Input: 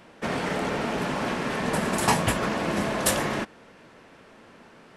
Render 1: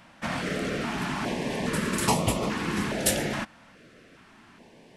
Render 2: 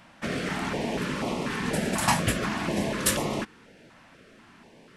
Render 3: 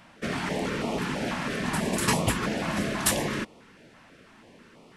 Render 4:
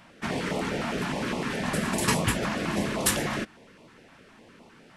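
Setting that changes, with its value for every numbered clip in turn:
step-sequenced notch, rate: 2.4 Hz, 4.1 Hz, 6.1 Hz, 9.8 Hz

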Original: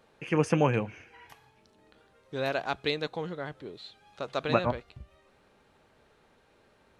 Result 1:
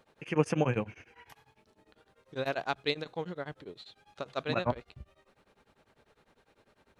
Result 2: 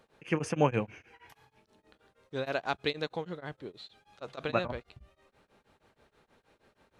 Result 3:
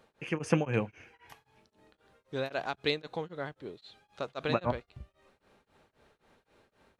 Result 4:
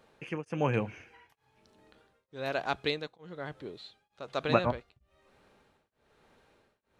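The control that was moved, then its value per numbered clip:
tremolo of two beating tones, nulls at: 10 Hz, 6.3 Hz, 3.8 Hz, 1.1 Hz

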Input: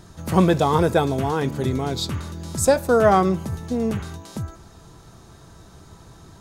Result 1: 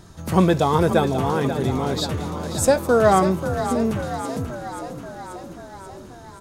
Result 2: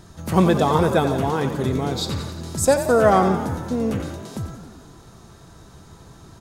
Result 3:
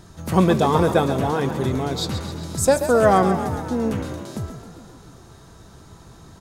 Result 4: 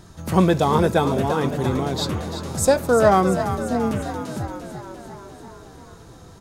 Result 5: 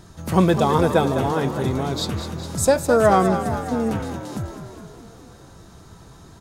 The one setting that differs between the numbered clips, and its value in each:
frequency-shifting echo, time: 535 ms, 89 ms, 132 ms, 344 ms, 205 ms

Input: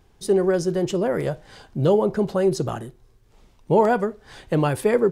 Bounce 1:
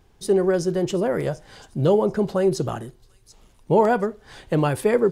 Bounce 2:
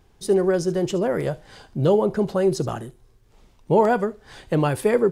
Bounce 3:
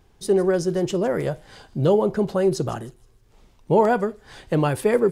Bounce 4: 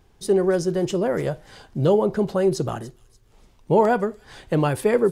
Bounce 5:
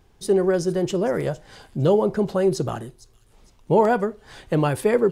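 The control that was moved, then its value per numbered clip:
feedback echo behind a high-pass, time: 738 ms, 72 ms, 157 ms, 291 ms, 458 ms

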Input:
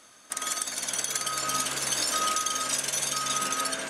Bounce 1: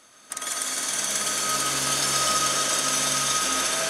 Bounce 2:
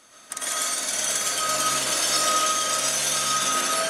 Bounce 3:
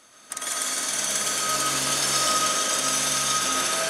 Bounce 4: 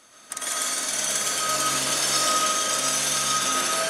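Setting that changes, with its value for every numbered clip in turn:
algorithmic reverb, RT60: 5.1 s, 0.5 s, 2.3 s, 1.1 s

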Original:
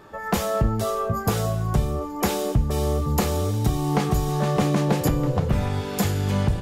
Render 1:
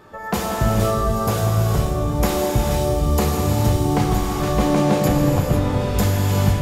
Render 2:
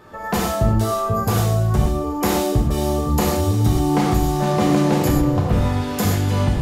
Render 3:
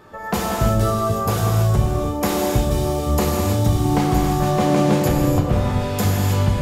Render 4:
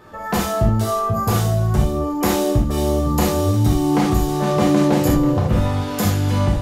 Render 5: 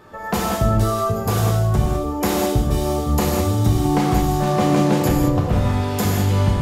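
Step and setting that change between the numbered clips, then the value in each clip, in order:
gated-style reverb, gate: 530 ms, 150 ms, 350 ms, 100 ms, 230 ms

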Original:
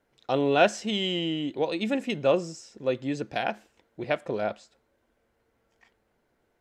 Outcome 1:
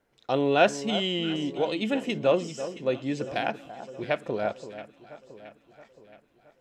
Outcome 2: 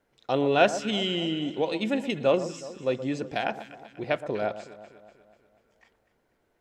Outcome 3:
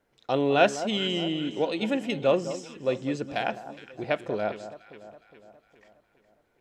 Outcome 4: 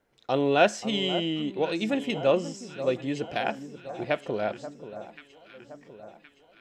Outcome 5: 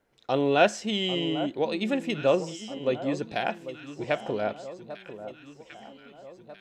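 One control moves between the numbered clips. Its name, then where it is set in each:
echo whose repeats swap between lows and highs, time: 336 ms, 122 ms, 206 ms, 534 ms, 796 ms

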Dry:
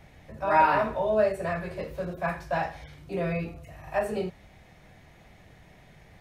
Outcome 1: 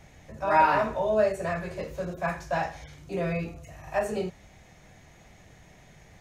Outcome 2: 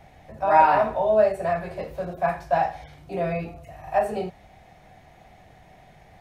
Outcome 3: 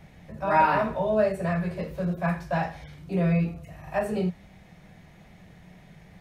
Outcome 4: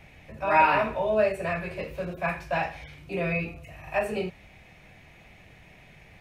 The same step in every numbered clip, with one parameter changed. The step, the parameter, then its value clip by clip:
peaking EQ, frequency: 6.6 kHz, 740 Hz, 180 Hz, 2.5 kHz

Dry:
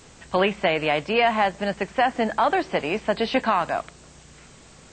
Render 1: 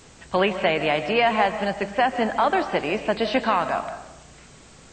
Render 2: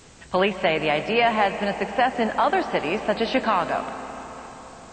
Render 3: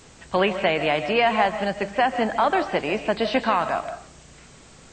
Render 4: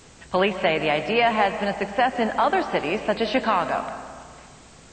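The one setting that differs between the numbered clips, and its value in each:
algorithmic reverb, RT60: 0.93 s, 4.6 s, 0.44 s, 1.9 s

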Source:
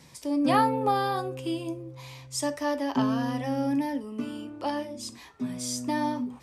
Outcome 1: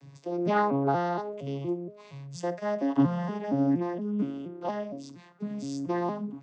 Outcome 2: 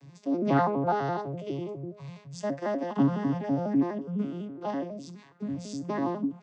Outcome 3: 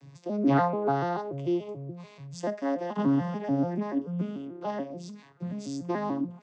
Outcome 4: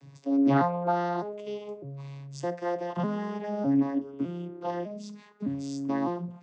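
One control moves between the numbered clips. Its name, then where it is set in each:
vocoder on a broken chord, a note every: 234 ms, 83 ms, 145 ms, 606 ms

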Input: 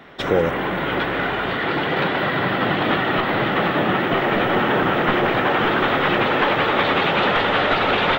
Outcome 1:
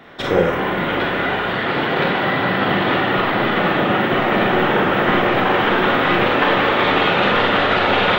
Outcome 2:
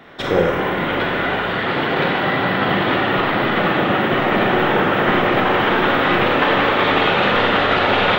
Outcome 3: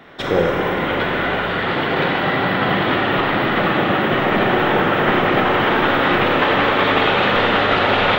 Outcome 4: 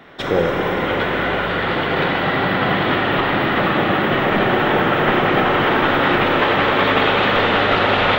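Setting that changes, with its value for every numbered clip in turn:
Schroeder reverb, RT60: 0.39 s, 0.86 s, 1.9 s, 4.2 s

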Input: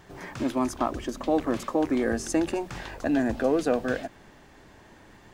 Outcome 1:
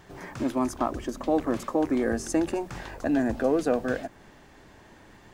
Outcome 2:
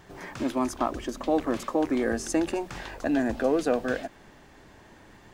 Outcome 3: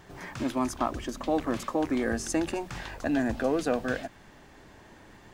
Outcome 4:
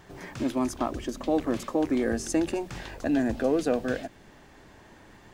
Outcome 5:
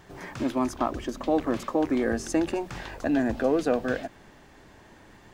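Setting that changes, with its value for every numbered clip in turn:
dynamic bell, frequency: 3.3 kHz, 110 Hz, 410 Hz, 1.1 kHz, 9.4 kHz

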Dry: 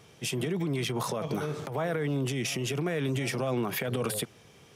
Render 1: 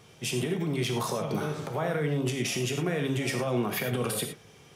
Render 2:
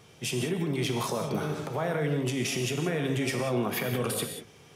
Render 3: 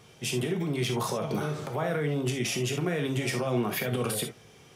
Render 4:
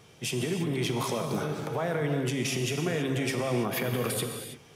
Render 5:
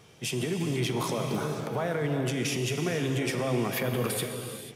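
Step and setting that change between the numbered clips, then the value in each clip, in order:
gated-style reverb, gate: 130 ms, 210 ms, 90 ms, 350 ms, 520 ms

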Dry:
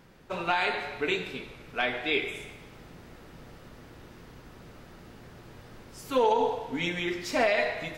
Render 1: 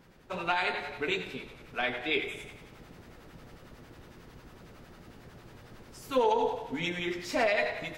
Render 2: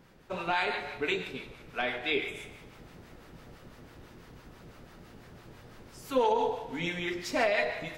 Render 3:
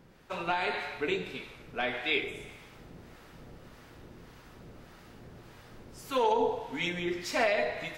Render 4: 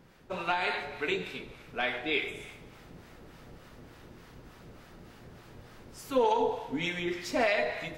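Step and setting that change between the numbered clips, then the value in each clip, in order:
harmonic tremolo, rate: 11 Hz, 6 Hz, 1.7 Hz, 3.4 Hz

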